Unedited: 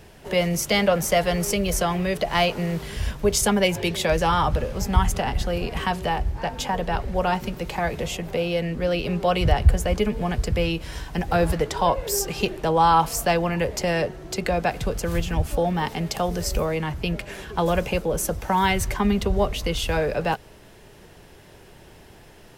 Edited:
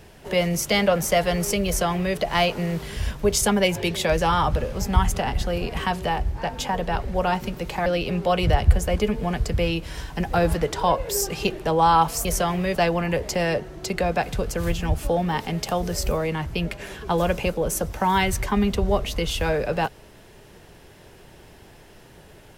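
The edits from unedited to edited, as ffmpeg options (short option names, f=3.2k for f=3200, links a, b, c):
-filter_complex "[0:a]asplit=4[a][b][c][d];[a]atrim=end=7.862[e];[b]atrim=start=8.838:end=13.232[f];[c]atrim=start=1.658:end=2.162[g];[d]atrim=start=13.228[h];[e][f]acrossfade=d=0.004:c1=hsin:c2=hsin[i];[i][g]acrossfade=d=0.004:c1=hsin:c2=hsin[j];[j][h]acrossfade=d=0.004:c1=hsin:c2=hsin"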